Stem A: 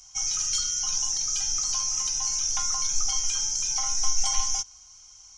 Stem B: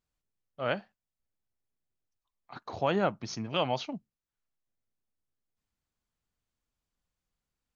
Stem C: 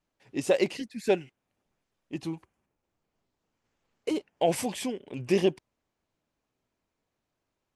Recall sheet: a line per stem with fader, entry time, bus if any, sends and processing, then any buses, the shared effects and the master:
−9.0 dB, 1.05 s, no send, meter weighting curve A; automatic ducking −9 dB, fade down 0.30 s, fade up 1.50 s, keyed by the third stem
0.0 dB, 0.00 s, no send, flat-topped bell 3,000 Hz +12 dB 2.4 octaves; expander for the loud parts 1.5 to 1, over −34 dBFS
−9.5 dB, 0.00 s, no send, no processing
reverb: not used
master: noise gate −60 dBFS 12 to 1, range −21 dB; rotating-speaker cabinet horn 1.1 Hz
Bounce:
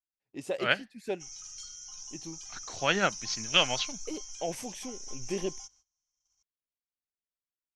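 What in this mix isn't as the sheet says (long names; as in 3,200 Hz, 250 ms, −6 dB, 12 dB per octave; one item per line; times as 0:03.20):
stem A: missing meter weighting curve A
master: missing rotating-speaker cabinet horn 1.1 Hz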